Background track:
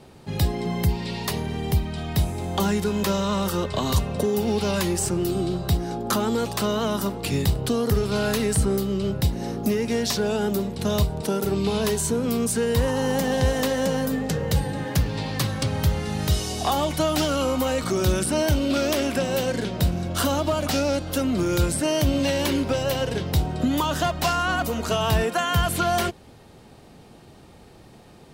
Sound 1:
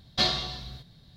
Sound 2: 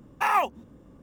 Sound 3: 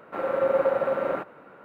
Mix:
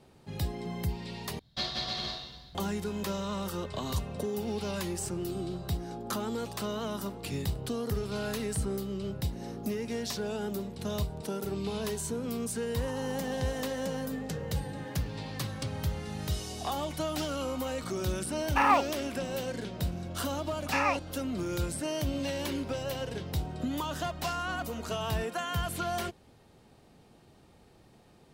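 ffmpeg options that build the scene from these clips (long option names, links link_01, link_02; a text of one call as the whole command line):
ffmpeg -i bed.wav -i cue0.wav -i cue1.wav -filter_complex "[2:a]asplit=2[link_01][link_02];[0:a]volume=-10.5dB[link_03];[1:a]aecho=1:1:180|306|394.2|455.9|499.2:0.794|0.631|0.501|0.398|0.316[link_04];[link_01]acrossover=split=7800[link_05][link_06];[link_06]acompressor=threshold=-54dB:ratio=4:attack=1:release=60[link_07];[link_05][link_07]amix=inputs=2:normalize=0[link_08];[link_02]lowpass=frequency=2500:width_type=q:width=3.3[link_09];[link_03]asplit=2[link_10][link_11];[link_10]atrim=end=1.394[link_12];[link_04]atrim=end=1.16,asetpts=PTS-STARTPTS,volume=-9.5dB[link_13];[link_11]atrim=start=2.546[link_14];[link_08]atrim=end=1.02,asetpts=PTS-STARTPTS,volume=-1dB,afade=type=in:duration=0.004:curve=hsin,afade=type=out:start_time=1.016:duration=0.004:curve=hsin,adelay=18350[link_15];[link_09]atrim=end=1.02,asetpts=PTS-STARTPTS,volume=-9dB,afade=type=in:duration=0.004:curve=hsin,afade=type=out:start_time=1.016:duration=0.004:curve=hsin,adelay=20510[link_16];[link_12][link_13]acrossfade=duration=0.004:curve1=hsin:curve2=hsin[link_17];[link_17][link_14]acrossfade=duration=0.004:curve1=hsin:curve2=hsin[link_18];[link_18][link_15][link_16]amix=inputs=3:normalize=0" out.wav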